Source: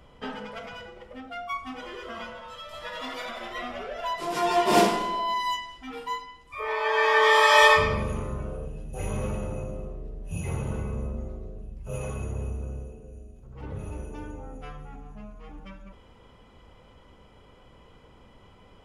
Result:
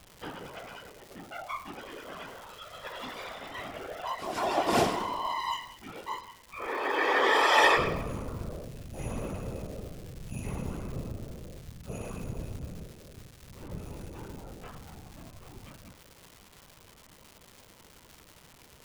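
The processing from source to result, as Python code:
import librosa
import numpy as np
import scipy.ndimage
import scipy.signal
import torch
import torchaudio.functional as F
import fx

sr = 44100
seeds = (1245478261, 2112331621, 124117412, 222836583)

y = fx.whisperise(x, sr, seeds[0])
y = fx.dmg_crackle(y, sr, seeds[1], per_s=410.0, level_db=-35.0)
y = y * librosa.db_to_amplitude(-5.0)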